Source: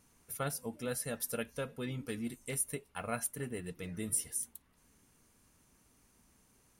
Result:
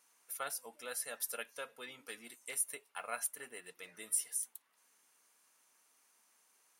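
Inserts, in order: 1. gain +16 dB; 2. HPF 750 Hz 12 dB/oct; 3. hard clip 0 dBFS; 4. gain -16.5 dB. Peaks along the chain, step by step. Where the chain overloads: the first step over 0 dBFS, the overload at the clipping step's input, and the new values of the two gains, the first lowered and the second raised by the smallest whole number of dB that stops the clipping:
-3.0, -3.0, -3.0, -19.5 dBFS; no overload

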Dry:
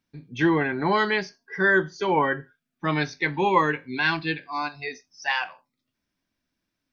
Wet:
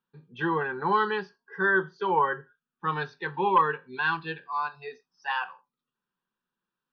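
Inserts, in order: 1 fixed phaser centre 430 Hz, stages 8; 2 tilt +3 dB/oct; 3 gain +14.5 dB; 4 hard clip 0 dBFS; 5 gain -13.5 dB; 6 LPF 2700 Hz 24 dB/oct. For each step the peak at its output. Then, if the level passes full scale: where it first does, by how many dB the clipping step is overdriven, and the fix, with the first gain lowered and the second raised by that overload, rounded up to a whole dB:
-8.0, -8.5, +6.0, 0.0, -13.5, -12.5 dBFS; step 3, 6.0 dB; step 3 +8.5 dB, step 5 -7.5 dB

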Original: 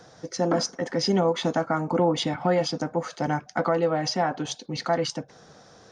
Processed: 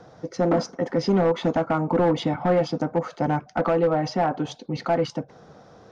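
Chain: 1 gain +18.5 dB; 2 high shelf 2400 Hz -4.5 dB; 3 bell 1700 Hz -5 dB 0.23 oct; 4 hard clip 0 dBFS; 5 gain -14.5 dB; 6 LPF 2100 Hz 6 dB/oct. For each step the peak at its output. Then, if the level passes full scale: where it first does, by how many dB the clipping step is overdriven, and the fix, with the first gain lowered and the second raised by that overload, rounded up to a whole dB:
+8.5, +8.0, +8.0, 0.0, -14.5, -14.5 dBFS; step 1, 8.0 dB; step 1 +10.5 dB, step 5 -6.5 dB

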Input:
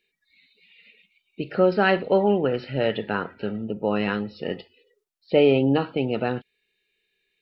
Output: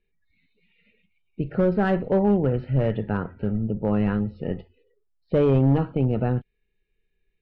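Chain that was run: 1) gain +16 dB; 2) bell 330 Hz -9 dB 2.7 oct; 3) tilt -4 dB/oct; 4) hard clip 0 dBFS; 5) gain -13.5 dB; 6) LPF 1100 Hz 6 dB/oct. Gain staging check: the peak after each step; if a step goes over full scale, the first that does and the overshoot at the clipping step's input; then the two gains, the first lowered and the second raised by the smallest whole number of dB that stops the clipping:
+10.0, +7.0, +6.5, 0.0, -13.5, -13.5 dBFS; step 1, 6.5 dB; step 1 +9 dB, step 5 -6.5 dB

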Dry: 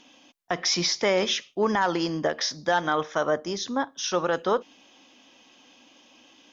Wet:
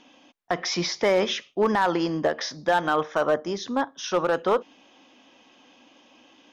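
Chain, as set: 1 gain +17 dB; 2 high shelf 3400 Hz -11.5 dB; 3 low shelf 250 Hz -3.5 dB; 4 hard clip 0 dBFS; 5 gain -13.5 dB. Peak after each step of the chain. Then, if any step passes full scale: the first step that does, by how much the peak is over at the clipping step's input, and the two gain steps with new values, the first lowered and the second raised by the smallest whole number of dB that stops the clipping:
+6.0, +5.0, +4.5, 0.0, -13.5 dBFS; step 1, 4.5 dB; step 1 +12 dB, step 5 -8.5 dB

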